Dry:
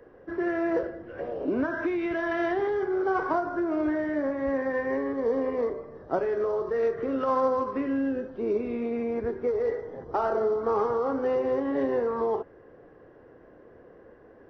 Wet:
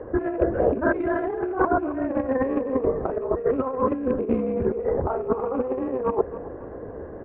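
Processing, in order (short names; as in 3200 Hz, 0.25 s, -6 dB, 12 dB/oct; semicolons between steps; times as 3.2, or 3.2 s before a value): rattling part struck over -37 dBFS, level -35 dBFS; LPF 1100 Hz 12 dB/oct; bell 68 Hz +10.5 dB 0.52 oct; in parallel at 0 dB: limiter -23 dBFS, peak gain reduction 8.5 dB; on the sum: negative-ratio compressor -27 dBFS, ratio -0.5; granular stretch 0.5×, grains 31 ms; on a send: feedback echo 0.272 s, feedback 43%, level -16 dB; on the sum: gain +5.5 dB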